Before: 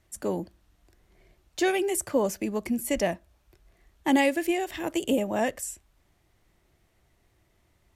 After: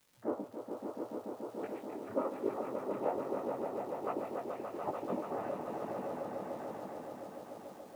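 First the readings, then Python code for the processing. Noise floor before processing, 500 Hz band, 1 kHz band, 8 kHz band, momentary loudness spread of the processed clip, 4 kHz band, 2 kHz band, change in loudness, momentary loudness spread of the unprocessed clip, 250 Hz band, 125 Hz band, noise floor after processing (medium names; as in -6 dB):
-68 dBFS, -7.5 dB, -6.0 dB, under -25 dB, 8 LU, under -20 dB, -20.0 dB, -12.0 dB, 13 LU, -12.5 dB, -9.5 dB, -53 dBFS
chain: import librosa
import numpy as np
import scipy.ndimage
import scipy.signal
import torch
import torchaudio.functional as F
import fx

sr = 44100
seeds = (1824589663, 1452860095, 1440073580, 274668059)

y = fx.hpss_only(x, sr, part='percussive')
y = scipy.signal.sosfilt(scipy.signal.cheby1(3, 1.0, 1100.0, 'lowpass', fs=sr, output='sos'), y)
y = fx.noise_vocoder(y, sr, seeds[0], bands=12)
y = fx.quant_dither(y, sr, seeds[1], bits=12, dither='triangular')
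y = fx.dmg_crackle(y, sr, seeds[2], per_s=150.0, level_db=-47.0)
y = fx.echo_swell(y, sr, ms=144, loudest=5, wet_db=-6.5)
y = fx.detune_double(y, sr, cents=41)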